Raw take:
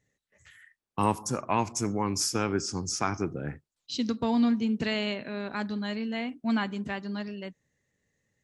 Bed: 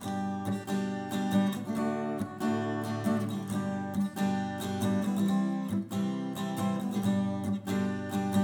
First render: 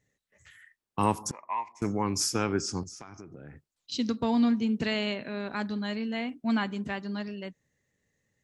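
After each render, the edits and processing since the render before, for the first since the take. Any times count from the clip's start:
0:01.31–0:01.82: pair of resonant band-passes 1,400 Hz, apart 1 octave
0:02.83–0:03.92: downward compressor 12 to 1, threshold −41 dBFS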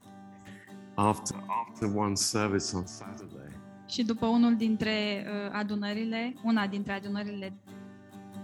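mix in bed −16.5 dB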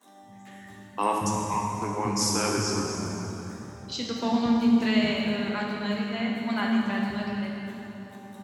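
multiband delay without the direct sound highs, lows 230 ms, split 270 Hz
dense smooth reverb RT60 3.3 s, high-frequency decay 0.75×, DRR −2 dB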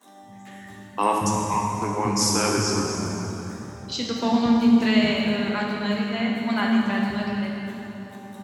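level +4 dB

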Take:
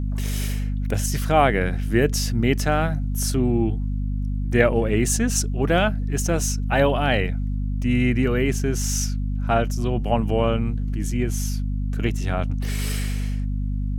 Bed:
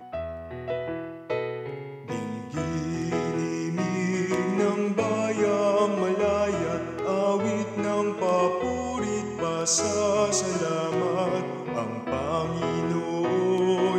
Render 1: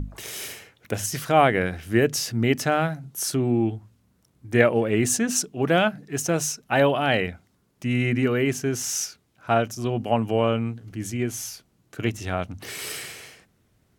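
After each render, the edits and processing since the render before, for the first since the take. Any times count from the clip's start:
mains-hum notches 50/100/150/200/250 Hz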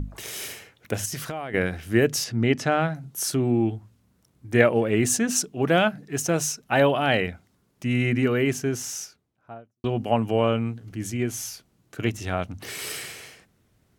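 0:01.05–0:01.54: downward compressor 16 to 1, threshold −27 dBFS
0:02.24–0:02.95: high-frequency loss of the air 64 metres
0:08.49–0:09.84: fade out and dull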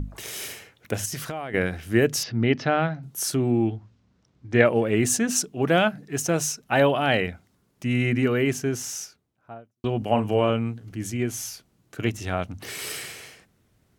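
0:02.23–0:03.03: Butterworth low-pass 5,300 Hz
0:03.68–0:04.66: low-pass filter 6,000 Hz 24 dB per octave
0:09.98–0:10.50: double-tracking delay 38 ms −9 dB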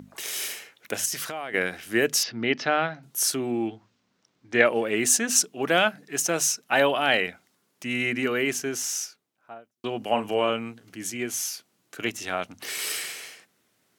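high-pass filter 230 Hz 12 dB per octave
tilt shelving filter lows −4 dB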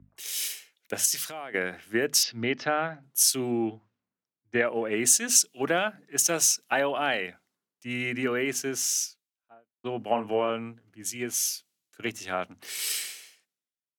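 downward compressor 12 to 1, threshold −23 dBFS, peak gain reduction 10.5 dB
multiband upward and downward expander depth 100%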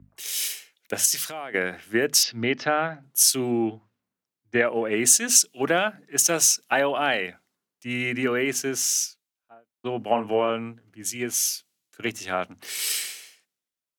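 level +3.5 dB
brickwall limiter −3 dBFS, peak gain reduction 1 dB

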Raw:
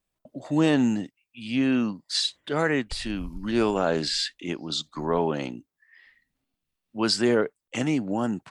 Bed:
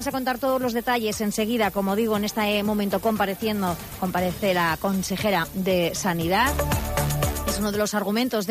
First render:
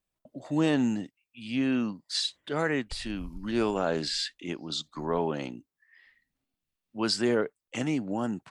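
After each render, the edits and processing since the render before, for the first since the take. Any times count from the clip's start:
level −4 dB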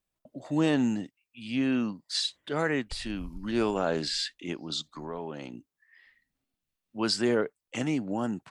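0:04.84–0:05.54: downward compressor 2 to 1, threshold −39 dBFS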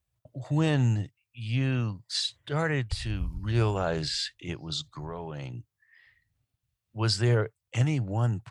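high-pass filter 50 Hz
low shelf with overshoot 160 Hz +12 dB, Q 3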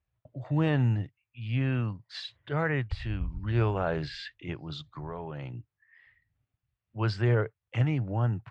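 Chebyshev low-pass filter 2,200 Hz, order 2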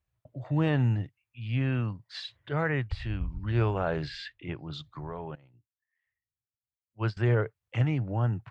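0:04.32–0:04.72: low-pass filter 4,400 Hz → 3,100 Hz
0:05.35–0:07.17: expander for the loud parts 2.5 to 1, over −40 dBFS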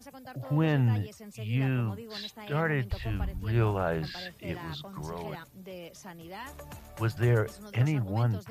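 mix in bed −21.5 dB

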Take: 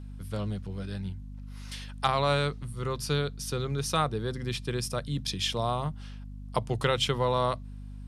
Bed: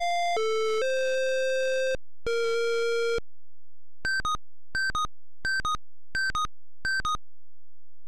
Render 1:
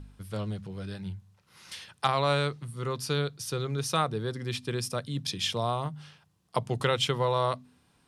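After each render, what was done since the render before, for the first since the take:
hum removal 50 Hz, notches 5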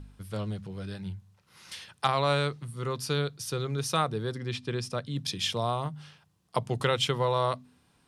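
0:04.38–0:05.16: high-frequency loss of the air 62 metres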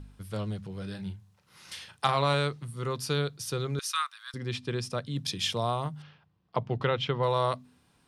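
0:00.78–0:02.34: double-tracking delay 36 ms −11 dB
0:03.79–0:04.34: Butterworth high-pass 1,100 Hz 48 dB per octave
0:06.02–0:07.23: high-frequency loss of the air 250 metres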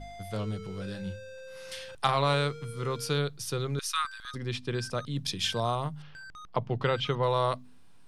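mix in bed −19 dB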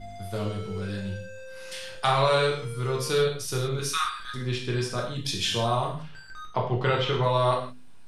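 reverb whose tail is shaped and stops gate 200 ms falling, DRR −2.5 dB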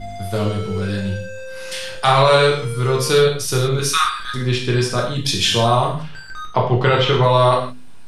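level +10 dB
brickwall limiter −3 dBFS, peak gain reduction 3 dB

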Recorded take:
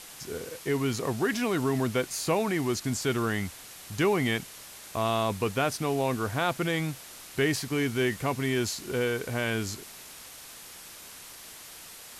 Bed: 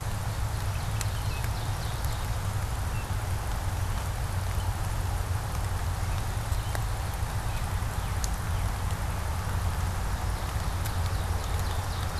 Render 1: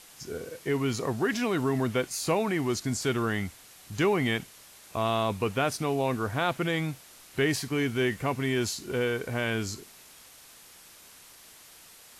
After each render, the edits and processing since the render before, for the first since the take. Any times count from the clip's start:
noise reduction from a noise print 6 dB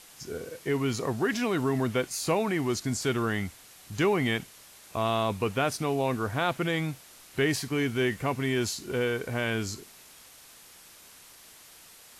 no processing that can be heard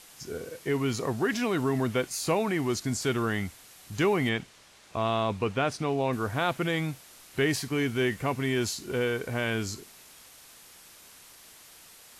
0:04.29–0:06.13: high-frequency loss of the air 62 metres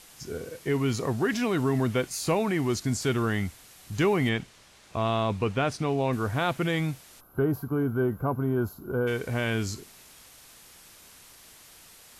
0:07.20–0:09.07: gain on a spectral selection 1,600–11,000 Hz −24 dB
low-shelf EQ 170 Hz +6 dB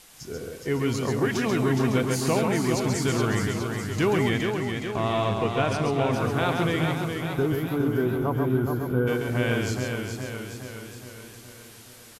single-tap delay 136 ms −4.5 dB
feedback echo with a swinging delay time 417 ms, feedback 58%, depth 55 cents, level −5.5 dB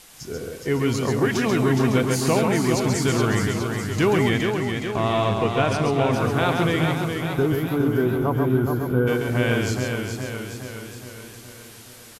level +3.5 dB

